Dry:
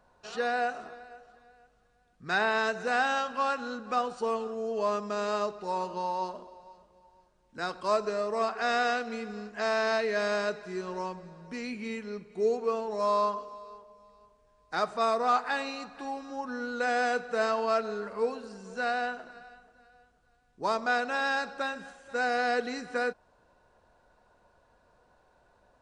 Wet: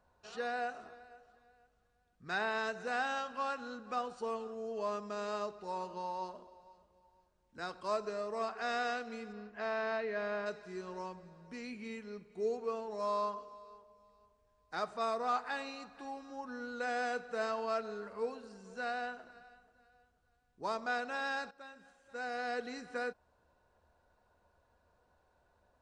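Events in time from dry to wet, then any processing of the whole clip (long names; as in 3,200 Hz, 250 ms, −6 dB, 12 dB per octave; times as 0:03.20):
0:09.32–0:10.45: low-pass filter 3,800 Hz → 2,500 Hz
0:21.51–0:22.78: fade in, from −14.5 dB
whole clip: parametric band 75 Hz +9 dB 0.48 octaves; level −8 dB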